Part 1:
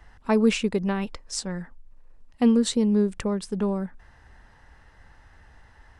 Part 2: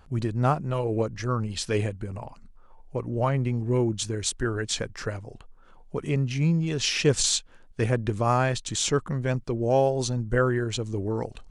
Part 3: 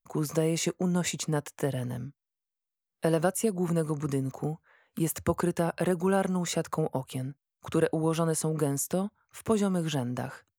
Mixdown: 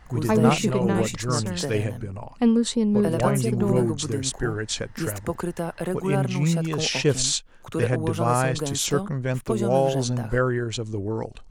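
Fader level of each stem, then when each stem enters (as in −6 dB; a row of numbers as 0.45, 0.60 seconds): 0.0, +0.5, −1.0 decibels; 0.00, 0.00, 0.00 seconds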